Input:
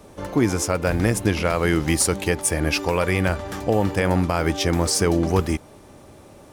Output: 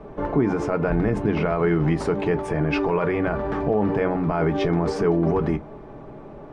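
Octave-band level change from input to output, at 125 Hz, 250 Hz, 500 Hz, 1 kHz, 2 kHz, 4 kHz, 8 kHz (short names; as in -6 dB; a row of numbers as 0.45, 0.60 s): -1.5 dB, +0.5 dB, +1.0 dB, -0.5 dB, -5.0 dB, -12.5 dB, under -20 dB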